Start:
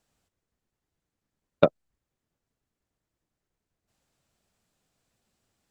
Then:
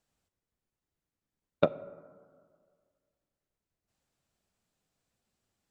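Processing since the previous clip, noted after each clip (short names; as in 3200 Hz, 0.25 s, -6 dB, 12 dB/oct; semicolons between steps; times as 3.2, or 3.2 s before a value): plate-style reverb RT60 1.9 s, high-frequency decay 0.3×, DRR 16 dB; gain -6 dB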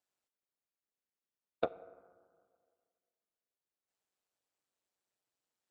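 HPF 340 Hz 12 dB/oct; ring modulator 94 Hz; gain -5 dB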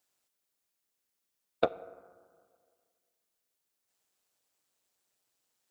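high shelf 3900 Hz +7 dB; gain +6 dB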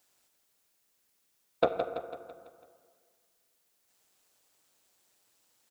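limiter -18 dBFS, peak gain reduction 9 dB; on a send: feedback echo 0.166 s, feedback 52%, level -8 dB; on the sum: gain +8.5 dB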